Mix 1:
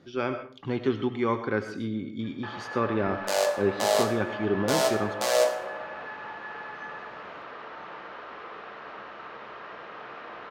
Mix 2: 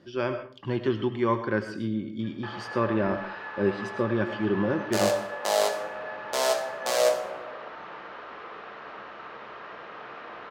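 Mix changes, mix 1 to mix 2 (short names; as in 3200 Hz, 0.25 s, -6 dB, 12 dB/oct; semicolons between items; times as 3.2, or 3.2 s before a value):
speech: add ripple EQ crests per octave 1.3, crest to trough 7 dB; second sound: entry +1.65 s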